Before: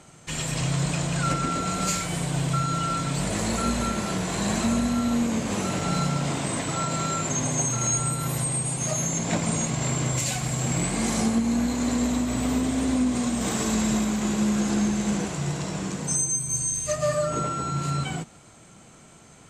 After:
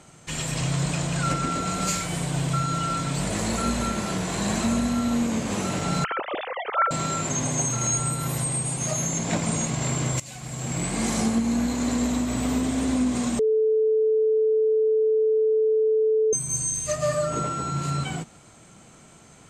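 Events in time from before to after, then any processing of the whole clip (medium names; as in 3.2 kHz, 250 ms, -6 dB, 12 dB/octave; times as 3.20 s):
6.04–6.91 s: formants replaced by sine waves
10.20–11.01 s: fade in, from -18.5 dB
13.39–16.33 s: bleep 437 Hz -17.5 dBFS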